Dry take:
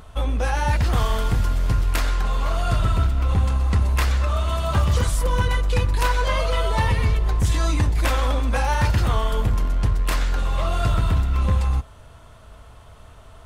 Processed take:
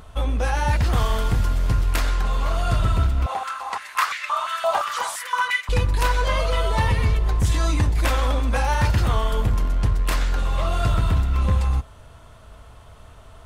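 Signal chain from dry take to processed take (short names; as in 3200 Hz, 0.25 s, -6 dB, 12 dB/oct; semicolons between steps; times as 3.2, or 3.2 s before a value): 3.26–5.69 stepped high-pass 5.8 Hz 740–2100 Hz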